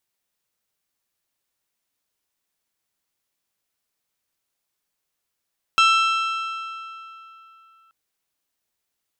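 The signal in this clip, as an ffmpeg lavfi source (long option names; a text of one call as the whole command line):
ffmpeg -f lavfi -i "aevalsrc='0.211*pow(10,-3*t/3.08)*sin(2*PI*1330*t)+0.133*pow(10,-3*t/2.502)*sin(2*PI*2660*t)+0.0841*pow(10,-3*t/2.369)*sin(2*PI*3192*t)+0.0531*pow(10,-3*t/2.215)*sin(2*PI*3990*t)+0.0335*pow(10,-3*t/2.032)*sin(2*PI*5320*t)+0.0211*pow(10,-3*t/1.9)*sin(2*PI*6650*t)+0.0133*pow(10,-3*t/1.799)*sin(2*PI*7980*t)':duration=2.13:sample_rate=44100" out.wav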